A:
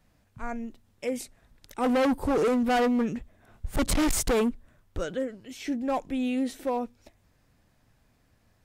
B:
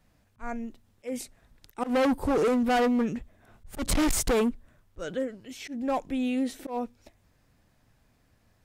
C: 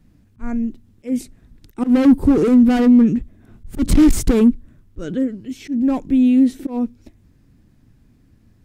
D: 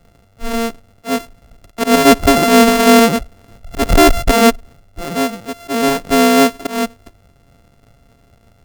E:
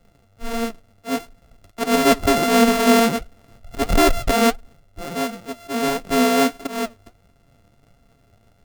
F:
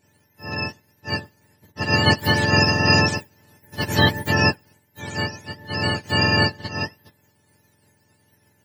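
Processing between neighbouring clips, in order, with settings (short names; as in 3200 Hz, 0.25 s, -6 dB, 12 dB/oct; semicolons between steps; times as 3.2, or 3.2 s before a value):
auto swell 0.12 s
resonant low shelf 430 Hz +11 dB, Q 1.5; gain +1.5 dB
sample sorter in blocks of 64 samples; gain +2.5 dB
flange 1.5 Hz, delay 3.6 ms, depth 6.8 ms, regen +62%; gain -2 dB
spectrum mirrored in octaves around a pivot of 1100 Hz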